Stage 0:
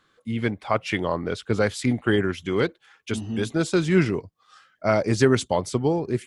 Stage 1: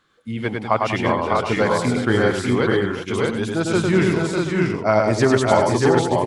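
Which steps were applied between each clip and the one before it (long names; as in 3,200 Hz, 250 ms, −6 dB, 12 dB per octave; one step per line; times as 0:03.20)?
dynamic equaliser 920 Hz, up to +7 dB, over −39 dBFS, Q 1.5
on a send: multi-tap delay 102/195/368/599/640/727 ms −3.5/−11.5/−11.5/−4/−3.5/−11 dB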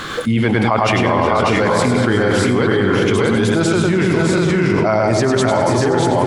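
on a send at −10 dB: convolution reverb RT60 3.3 s, pre-delay 85 ms
on the sum: envelope flattener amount 100%
level −2.5 dB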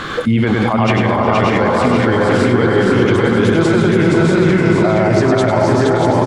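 low-pass filter 3,000 Hz 6 dB per octave
brickwall limiter −9.5 dBFS, peak gain reduction 7 dB
repeating echo 470 ms, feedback 39%, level −3.5 dB
level +3.5 dB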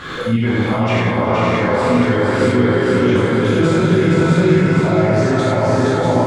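reverb whose tail is shaped and stops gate 130 ms flat, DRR −7 dB
level −10 dB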